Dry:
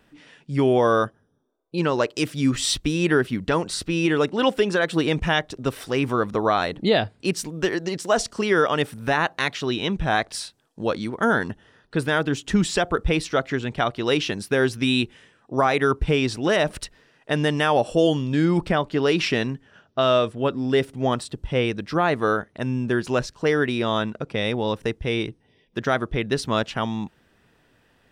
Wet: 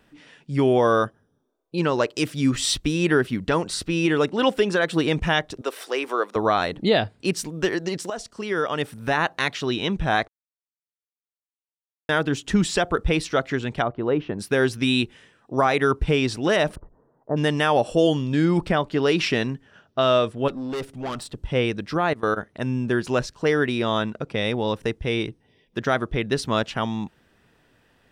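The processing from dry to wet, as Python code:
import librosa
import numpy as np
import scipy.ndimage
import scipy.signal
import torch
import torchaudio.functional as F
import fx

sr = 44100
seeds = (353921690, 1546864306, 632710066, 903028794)

y = fx.highpass(x, sr, hz=370.0, slope=24, at=(5.61, 6.36))
y = fx.lowpass(y, sr, hz=1100.0, slope=12, at=(13.82, 14.39))
y = fx.steep_lowpass(y, sr, hz=1100.0, slope=36, at=(16.74, 17.36), fade=0.02)
y = fx.tube_stage(y, sr, drive_db=26.0, bias=0.4, at=(20.48, 21.35))
y = fx.level_steps(y, sr, step_db=21, at=(21.95, 22.36), fade=0.02)
y = fx.edit(y, sr, fx.fade_in_from(start_s=8.1, length_s=1.18, floor_db=-13.0),
    fx.silence(start_s=10.28, length_s=1.81), tone=tone)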